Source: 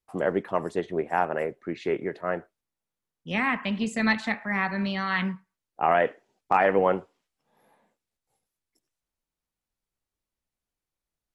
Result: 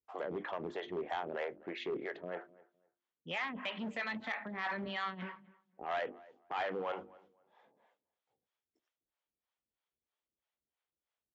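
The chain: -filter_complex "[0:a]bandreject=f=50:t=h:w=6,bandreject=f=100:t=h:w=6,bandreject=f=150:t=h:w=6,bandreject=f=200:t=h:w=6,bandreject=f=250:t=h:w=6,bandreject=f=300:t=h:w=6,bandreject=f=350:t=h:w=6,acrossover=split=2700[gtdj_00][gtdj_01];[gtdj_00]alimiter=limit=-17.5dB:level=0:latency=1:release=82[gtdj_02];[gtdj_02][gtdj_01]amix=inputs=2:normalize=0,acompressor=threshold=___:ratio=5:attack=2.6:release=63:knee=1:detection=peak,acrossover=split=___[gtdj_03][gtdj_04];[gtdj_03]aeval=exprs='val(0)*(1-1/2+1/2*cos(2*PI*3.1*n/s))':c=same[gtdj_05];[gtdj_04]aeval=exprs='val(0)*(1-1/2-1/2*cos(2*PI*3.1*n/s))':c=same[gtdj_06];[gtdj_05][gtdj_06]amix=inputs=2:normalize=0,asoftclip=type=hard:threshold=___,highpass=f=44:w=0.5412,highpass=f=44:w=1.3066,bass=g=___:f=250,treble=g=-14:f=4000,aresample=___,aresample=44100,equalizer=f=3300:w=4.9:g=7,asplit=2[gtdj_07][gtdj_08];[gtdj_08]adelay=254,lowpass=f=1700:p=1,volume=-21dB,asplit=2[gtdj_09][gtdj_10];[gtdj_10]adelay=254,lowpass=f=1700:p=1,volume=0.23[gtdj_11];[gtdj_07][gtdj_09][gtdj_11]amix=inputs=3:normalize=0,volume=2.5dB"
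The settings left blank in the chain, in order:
-29dB, 480, -33dB, -10, 16000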